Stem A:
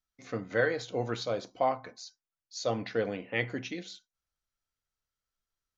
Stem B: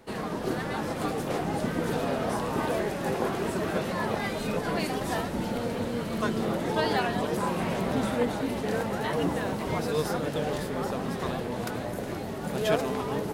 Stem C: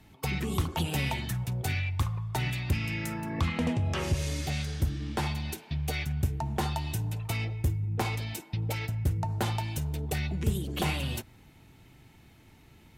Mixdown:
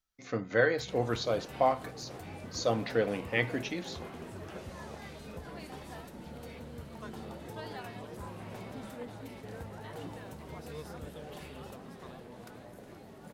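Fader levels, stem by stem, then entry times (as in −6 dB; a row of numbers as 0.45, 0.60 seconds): +1.5, −16.5, −19.5 decibels; 0.00, 0.80, 0.55 seconds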